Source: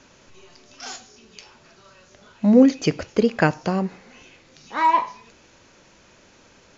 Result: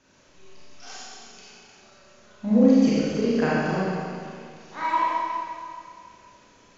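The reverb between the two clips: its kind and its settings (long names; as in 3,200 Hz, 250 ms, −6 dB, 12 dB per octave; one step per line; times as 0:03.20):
four-comb reverb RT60 2.3 s, combs from 30 ms, DRR −8.5 dB
level −12 dB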